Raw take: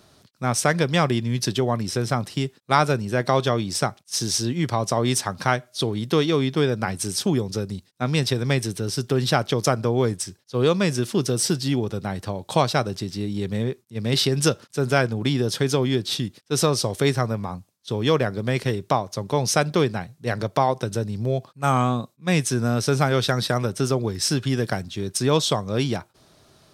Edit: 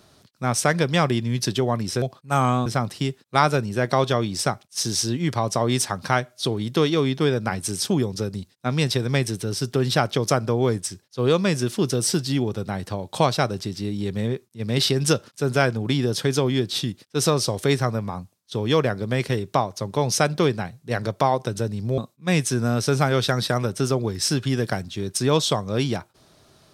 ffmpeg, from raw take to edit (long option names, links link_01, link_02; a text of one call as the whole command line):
ffmpeg -i in.wav -filter_complex "[0:a]asplit=4[link_01][link_02][link_03][link_04];[link_01]atrim=end=2.022[link_05];[link_02]atrim=start=21.338:end=21.982[link_06];[link_03]atrim=start=2.018:end=21.342[link_07];[link_04]atrim=start=21.978[link_08];[link_05][link_06]acrossfade=duration=0.004:curve1=hsin:curve2=hsin[link_09];[link_09][link_07]acrossfade=duration=0.004:curve1=hsin:curve2=hsin[link_10];[link_10][link_08]acrossfade=duration=0.004:curve1=hsin:curve2=hsin" out.wav